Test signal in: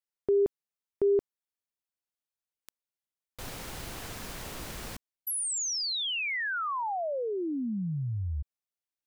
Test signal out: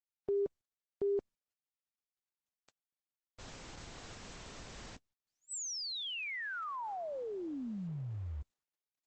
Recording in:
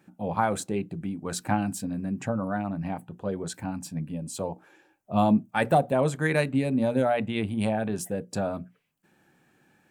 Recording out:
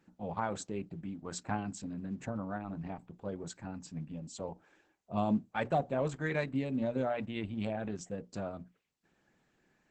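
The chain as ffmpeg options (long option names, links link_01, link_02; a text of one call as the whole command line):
ffmpeg -i in.wav -af "volume=-8.5dB" -ar 48000 -c:a libopus -b:a 10k out.opus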